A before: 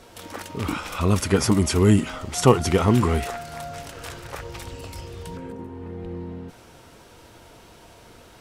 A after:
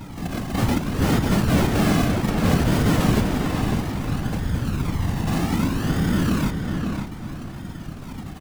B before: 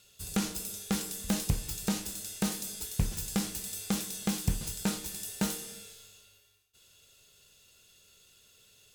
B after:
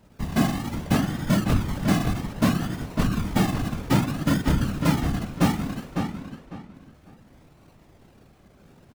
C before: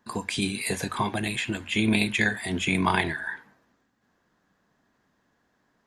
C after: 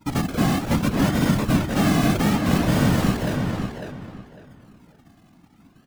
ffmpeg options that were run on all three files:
ffmpeg -i in.wav -filter_complex "[0:a]acrossover=split=3800[link_01][link_02];[link_02]acompressor=threshold=-42dB:ratio=4:attack=1:release=60[link_03];[link_01][link_03]amix=inputs=2:normalize=0,lowshelf=frequency=300:width_type=q:width=3:gain=12,apsyclip=4.5dB,acrusher=samples=37:mix=1:aa=0.000001:lfo=1:lforange=22.2:lforate=0.62,asoftclip=type=tanh:threshold=-17dB,afftfilt=real='hypot(re,im)*cos(2*PI*random(0))':imag='hypot(re,im)*sin(2*PI*random(1))':win_size=512:overlap=0.75,asplit=2[link_04][link_05];[link_05]adelay=551,lowpass=frequency=3500:poles=1,volume=-5dB,asplit=2[link_06][link_07];[link_07]adelay=551,lowpass=frequency=3500:poles=1,volume=0.25,asplit=2[link_08][link_09];[link_09]adelay=551,lowpass=frequency=3500:poles=1,volume=0.25[link_10];[link_04][link_06][link_08][link_10]amix=inputs=4:normalize=0,volume=5dB" out.wav

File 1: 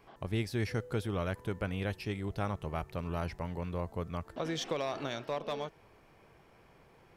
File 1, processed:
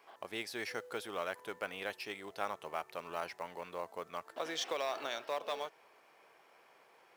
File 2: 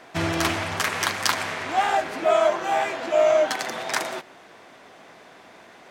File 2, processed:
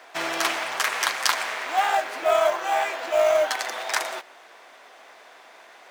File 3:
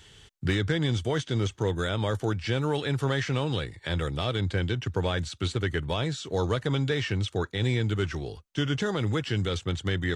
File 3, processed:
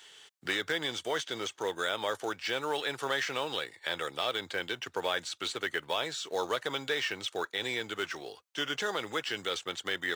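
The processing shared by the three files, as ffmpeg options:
ffmpeg -i in.wav -filter_complex "[0:a]highpass=570,asplit=2[link_01][link_02];[link_02]acrusher=bits=3:mode=log:mix=0:aa=0.000001,volume=-5.5dB[link_03];[link_01][link_03]amix=inputs=2:normalize=0,volume=-3dB" out.wav

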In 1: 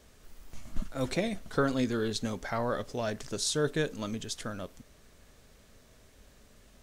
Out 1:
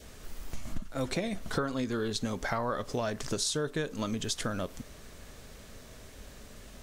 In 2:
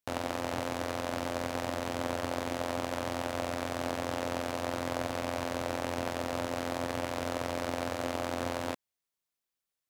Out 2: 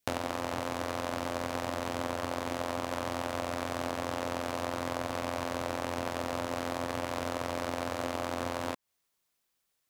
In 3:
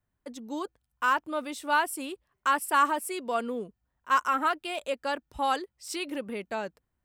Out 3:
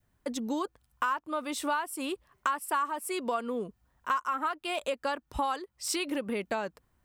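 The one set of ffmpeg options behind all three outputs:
ffmpeg -i in.wav -af "adynamicequalizer=threshold=0.00891:dfrequency=1100:dqfactor=2.7:tfrequency=1100:tqfactor=2.7:attack=5:release=100:ratio=0.375:range=3:mode=boostabove:tftype=bell,acompressor=threshold=-38dB:ratio=6,volume=9dB" out.wav

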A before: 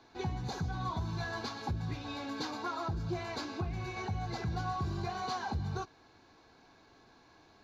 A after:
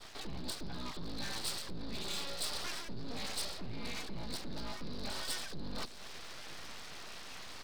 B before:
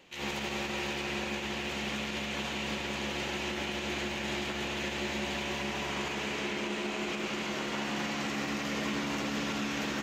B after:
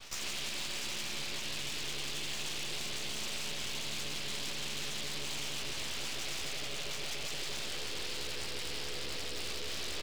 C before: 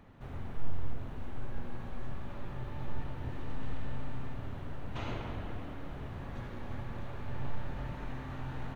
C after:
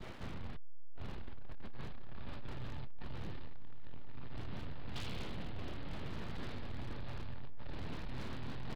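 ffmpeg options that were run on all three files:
ffmpeg -i in.wav -filter_complex "[0:a]adynamicequalizer=threshold=0.00282:dfrequency=1700:dqfactor=0.72:tfrequency=1700:tqfactor=0.72:attack=5:release=100:ratio=0.375:range=2:mode=cutabove:tftype=bell,aresample=11025,asoftclip=type=tanh:threshold=-34dB,aresample=44100,acrossover=split=230|3000[link_01][link_02][link_03];[link_02]acompressor=threshold=-55dB:ratio=2.5[link_04];[link_01][link_04][link_03]amix=inputs=3:normalize=0,aeval=exprs='abs(val(0))':channel_layout=same,areverse,acompressor=threshold=-50dB:ratio=6,areverse,highshelf=frequency=2400:gain=10,asplit=2[link_05][link_06];[link_06]adelay=951,lowpass=frequency=1600:poles=1,volume=-18.5dB,asplit=2[link_07][link_08];[link_08]adelay=951,lowpass=frequency=1600:poles=1,volume=0.41,asplit=2[link_09][link_10];[link_10]adelay=951,lowpass=frequency=1600:poles=1,volume=0.41[link_11];[link_05][link_07][link_09][link_11]amix=inputs=4:normalize=0,volume=12.5dB" out.wav

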